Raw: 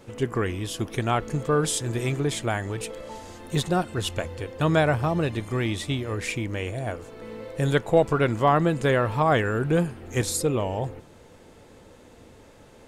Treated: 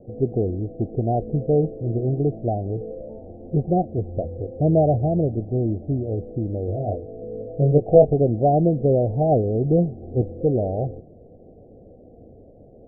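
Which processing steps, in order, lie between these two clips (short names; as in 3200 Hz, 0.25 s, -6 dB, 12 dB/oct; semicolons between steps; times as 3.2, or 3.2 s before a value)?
Chebyshev low-pass 760 Hz, order 8; 6.66–8.14 doubler 20 ms -3.5 dB; gain +4.5 dB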